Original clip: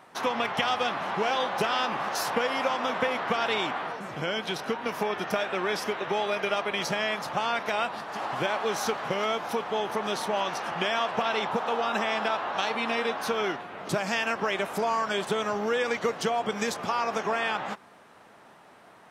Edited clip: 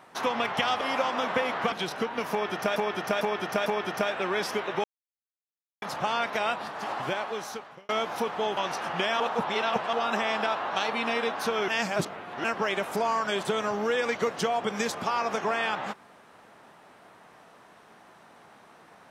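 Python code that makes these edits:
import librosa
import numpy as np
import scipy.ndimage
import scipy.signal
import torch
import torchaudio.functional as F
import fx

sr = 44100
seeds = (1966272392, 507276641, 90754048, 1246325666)

y = fx.edit(x, sr, fx.cut(start_s=0.81, length_s=1.66),
    fx.cut(start_s=3.38, length_s=1.02),
    fx.repeat(start_s=4.99, length_s=0.45, count=4),
    fx.silence(start_s=6.17, length_s=0.98),
    fx.fade_out_span(start_s=8.21, length_s=1.01),
    fx.cut(start_s=9.9, length_s=0.49),
    fx.reverse_span(start_s=11.02, length_s=0.73),
    fx.reverse_span(start_s=13.5, length_s=0.76), tone=tone)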